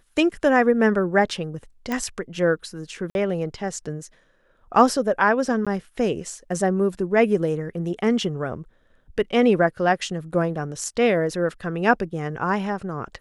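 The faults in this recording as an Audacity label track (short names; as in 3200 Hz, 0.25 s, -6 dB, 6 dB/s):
1.920000	1.920000	pop -13 dBFS
3.100000	3.150000	gap 51 ms
5.650000	5.670000	gap 16 ms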